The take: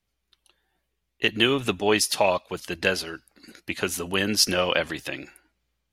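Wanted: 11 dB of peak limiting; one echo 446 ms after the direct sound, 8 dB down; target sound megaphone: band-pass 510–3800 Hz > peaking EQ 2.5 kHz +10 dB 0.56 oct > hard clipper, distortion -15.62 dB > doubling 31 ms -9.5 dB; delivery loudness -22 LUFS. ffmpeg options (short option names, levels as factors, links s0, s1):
-filter_complex "[0:a]alimiter=limit=0.168:level=0:latency=1,highpass=510,lowpass=3800,equalizer=f=2500:t=o:w=0.56:g=10,aecho=1:1:446:0.398,asoftclip=type=hard:threshold=0.112,asplit=2[s0][s1];[s1]adelay=31,volume=0.335[s2];[s0][s2]amix=inputs=2:normalize=0,volume=1.88"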